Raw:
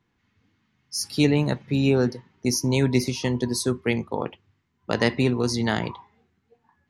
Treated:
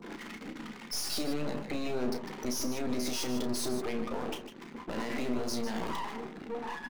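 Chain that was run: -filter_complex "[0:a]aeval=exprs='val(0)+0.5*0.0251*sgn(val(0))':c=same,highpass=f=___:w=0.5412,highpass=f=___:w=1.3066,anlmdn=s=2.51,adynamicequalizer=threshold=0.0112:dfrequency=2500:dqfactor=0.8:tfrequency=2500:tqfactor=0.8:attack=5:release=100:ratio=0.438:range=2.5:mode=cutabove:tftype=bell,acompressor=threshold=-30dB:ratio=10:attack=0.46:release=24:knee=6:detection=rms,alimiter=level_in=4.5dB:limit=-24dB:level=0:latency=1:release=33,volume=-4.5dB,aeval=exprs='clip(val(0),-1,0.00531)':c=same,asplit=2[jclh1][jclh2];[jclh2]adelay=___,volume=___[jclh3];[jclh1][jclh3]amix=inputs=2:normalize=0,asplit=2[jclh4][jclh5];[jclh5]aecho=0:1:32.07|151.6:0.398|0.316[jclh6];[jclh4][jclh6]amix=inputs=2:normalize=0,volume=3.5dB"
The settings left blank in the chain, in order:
200, 200, 13, -12dB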